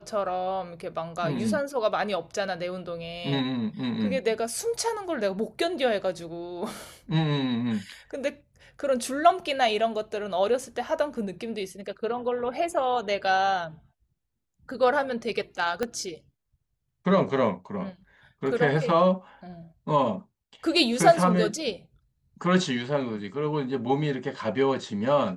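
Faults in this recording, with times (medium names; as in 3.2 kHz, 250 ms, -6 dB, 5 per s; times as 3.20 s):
15.83 s: pop -14 dBFS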